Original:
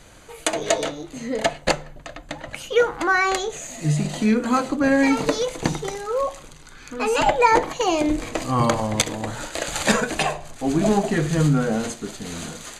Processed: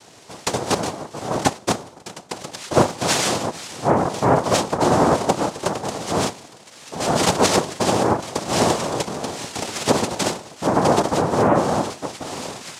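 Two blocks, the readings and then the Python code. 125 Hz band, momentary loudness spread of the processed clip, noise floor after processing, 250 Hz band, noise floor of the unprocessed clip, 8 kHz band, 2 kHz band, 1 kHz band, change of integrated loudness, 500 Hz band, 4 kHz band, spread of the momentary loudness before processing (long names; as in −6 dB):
0.0 dB, 13 LU, −45 dBFS, −0.5 dB, −44 dBFS, +3.5 dB, −3.5 dB, +2.5 dB, +1.0 dB, +2.0 dB, +3.5 dB, 14 LU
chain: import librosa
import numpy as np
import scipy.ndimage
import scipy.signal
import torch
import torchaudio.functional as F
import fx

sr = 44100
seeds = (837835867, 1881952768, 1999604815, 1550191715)

y = fx.dynamic_eq(x, sr, hz=1800.0, q=0.73, threshold_db=-34.0, ratio=4.0, max_db=-4)
y = fx.env_lowpass_down(y, sr, base_hz=810.0, full_db=-14.0)
y = fx.noise_vocoder(y, sr, seeds[0], bands=2)
y = F.gain(torch.from_numpy(y), 2.5).numpy()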